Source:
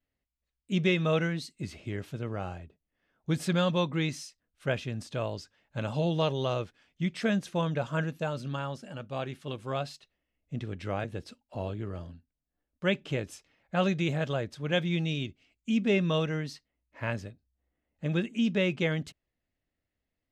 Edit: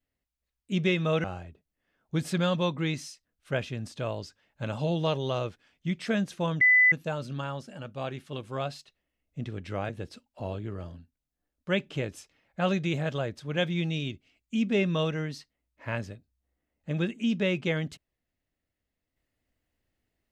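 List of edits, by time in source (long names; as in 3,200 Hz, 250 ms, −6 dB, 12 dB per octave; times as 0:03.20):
0:01.24–0:02.39: remove
0:07.76–0:08.07: beep over 2,000 Hz −16 dBFS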